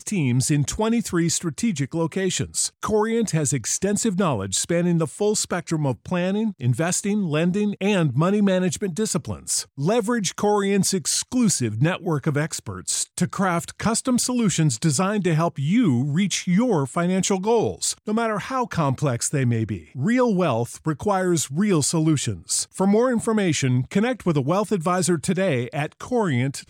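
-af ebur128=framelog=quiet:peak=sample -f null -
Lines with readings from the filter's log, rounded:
Integrated loudness:
  I:         -22.1 LUFS
  Threshold: -32.1 LUFS
Loudness range:
  LRA:         1.6 LU
  Threshold: -42.1 LUFS
  LRA low:   -22.8 LUFS
  LRA high:  -21.1 LUFS
Sample peak:
  Peak:       -9.7 dBFS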